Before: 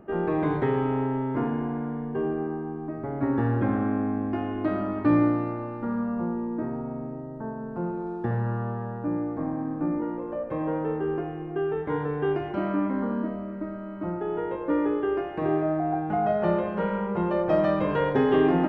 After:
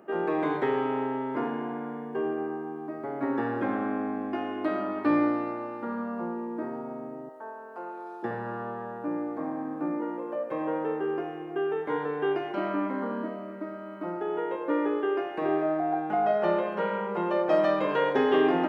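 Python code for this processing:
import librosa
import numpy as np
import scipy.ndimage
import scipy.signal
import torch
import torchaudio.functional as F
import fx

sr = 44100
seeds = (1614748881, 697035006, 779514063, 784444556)

y = fx.highpass(x, sr, hz=590.0, slope=12, at=(7.29, 8.23))
y = scipy.signal.sosfilt(scipy.signal.butter(2, 310.0, 'highpass', fs=sr, output='sos'), y)
y = fx.high_shelf(y, sr, hz=3400.0, db=7.5)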